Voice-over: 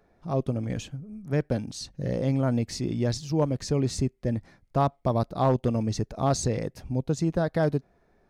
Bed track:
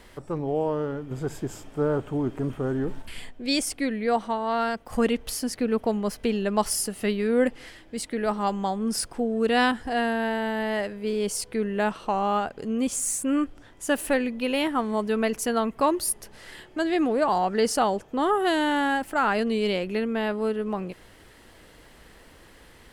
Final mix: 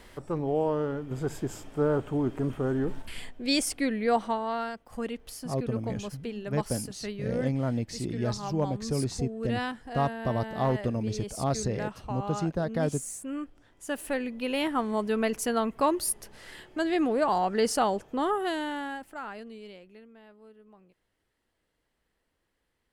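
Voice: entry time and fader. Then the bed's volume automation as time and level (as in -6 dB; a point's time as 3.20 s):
5.20 s, -4.0 dB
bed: 4.30 s -1 dB
4.83 s -11 dB
13.58 s -11 dB
14.73 s -2.5 dB
18.12 s -2.5 dB
20.20 s -27 dB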